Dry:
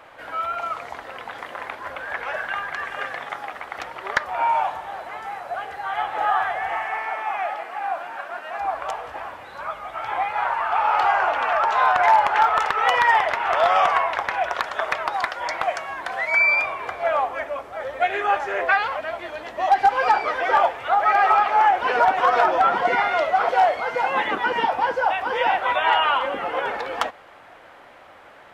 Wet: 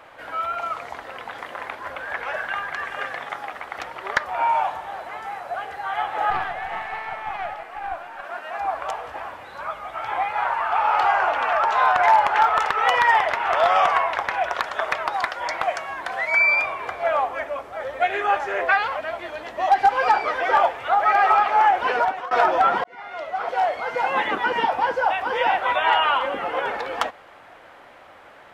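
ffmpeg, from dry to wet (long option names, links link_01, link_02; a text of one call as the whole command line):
ffmpeg -i in.wav -filter_complex "[0:a]asettb=1/sr,asplit=3[link_01][link_02][link_03];[link_01]atrim=end=6.304[link_04];[link_02]atrim=start=6.3:end=8.24,asetpts=PTS-STARTPTS,afade=type=in:duration=0.004:curve=qsin,afade=type=out:start_time=1.936:duration=0.004:curve=qsin,aeval=exprs='(tanh(5.01*val(0)+0.7)-tanh(0.7))/5.01':channel_layout=same[link_05];[link_03]atrim=start=8.236[link_06];[link_04][link_05]acrossfade=duration=0.004:curve1=hsin:curve2=qsin[link_07];[link_07][link_06]acrossfade=duration=0.004:curve1=qsin:curve2=hsin,asplit=3[link_08][link_09][link_10];[link_08]atrim=end=22.31,asetpts=PTS-STARTPTS,afade=type=out:start_time=21.88:duration=0.43:silence=0.0794328[link_11];[link_09]atrim=start=22.31:end=22.84,asetpts=PTS-STARTPTS,afade=type=in:duration=0.004:curve=hsin:silence=0.0794328,afade=type=out:start_time=0.526:duration=0.004:curve=hsin[link_12];[link_10]atrim=start=22.84,asetpts=PTS-STARTPTS,afade=type=in:duration=1.26[link_13];[link_11][link_12][link_13]concat=n=3:v=0:a=1" out.wav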